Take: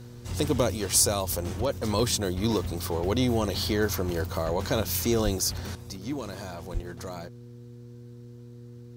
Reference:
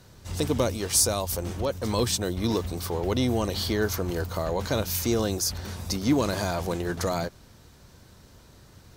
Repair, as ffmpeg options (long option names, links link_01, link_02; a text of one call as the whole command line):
ffmpeg -i in.wav -filter_complex "[0:a]bandreject=frequency=120:width_type=h:width=4,bandreject=frequency=240:width_type=h:width=4,bandreject=frequency=360:width_type=h:width=4,bandreject=frequency=480:width_type=h:width=4,asplit=3[link_01][link_02][link_03];[link_01]afade=type=out:start_time=5.24:duration=0.02[link_04];[link_02]highpass=frequency=140:width=0.5412,highpass=frequency=140:width=1.3066,afade=type=in:start_time=5.24:duration=0.02,afade=type=out:start_time=5.36:duration=0.02[link_05];[link_03]afade=type=in:start_time=5.36:duration=0.02[link_06];[link_04][link_05][link_06]amix=inputs=3:normalize=0,asplit=3[link_07][link_08][link_09];[link_07]afade=type=out:start_time=6.73:duration=0.02[link_10];[link_08]highpass=frequency=140:width=0.5412,highpass=frequency=140:width=1.3066,afade=type=in:start_time=6.73:duration=0.02,afade=type=out:start_time=6.85:duration=0.02[link_11];[link_09]afade=type=in:start_time=6.85:duration=0.02[link_12];[link_10][link_11][link_12]amix=inputs=3:normalize=0,asetnsamples=nb_out_samples=441:pad=0,asendcmd='5.75 volume volume 10.5dB',volume=0dB" out.wav